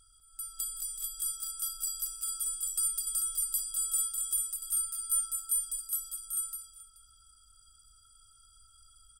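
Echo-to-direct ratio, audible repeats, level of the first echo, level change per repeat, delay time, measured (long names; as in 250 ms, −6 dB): −0.5 dB, 4, −7.0 dB, repeats not evenly spaced, 201 ms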